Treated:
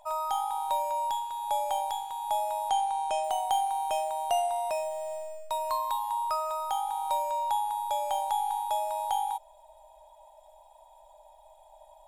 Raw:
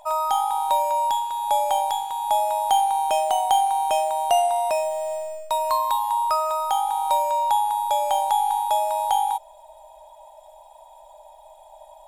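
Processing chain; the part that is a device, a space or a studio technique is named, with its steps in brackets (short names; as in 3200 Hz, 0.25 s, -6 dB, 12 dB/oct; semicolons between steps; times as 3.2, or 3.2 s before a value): low shelf boost with a cut just above (low shelf 83 Hz +6 dB; bell 270 Hz -4.5 dB 0.51 oct); 2.69–3.24 LPF 9800 Hz 24 dB/oct; gain -8 dB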